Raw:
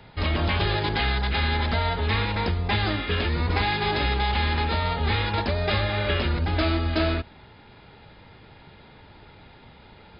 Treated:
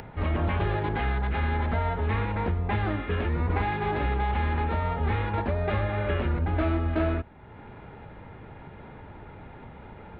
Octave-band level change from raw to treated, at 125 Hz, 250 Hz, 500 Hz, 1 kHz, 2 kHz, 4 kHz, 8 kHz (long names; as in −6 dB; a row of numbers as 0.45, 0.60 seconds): −1.5 dB, −1.5 dB, −2.0 dB, −2.5 dB, −6.5 dB, −16.5 dB, can't be measured